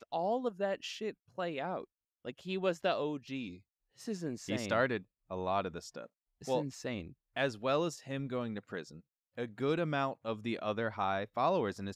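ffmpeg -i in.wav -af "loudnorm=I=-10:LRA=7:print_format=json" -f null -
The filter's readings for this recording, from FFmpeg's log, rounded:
"input_i" : "-35.9",
"input_tp" : "-18.2",
"input_lra" : "2.3",
"input_thresh" : "-46.4",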